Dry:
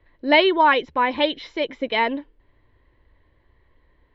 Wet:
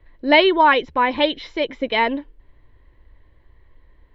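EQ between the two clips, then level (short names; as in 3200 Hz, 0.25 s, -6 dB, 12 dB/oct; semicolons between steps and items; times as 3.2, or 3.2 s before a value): low shelf 63 Hz +10 dB; +2.0 dB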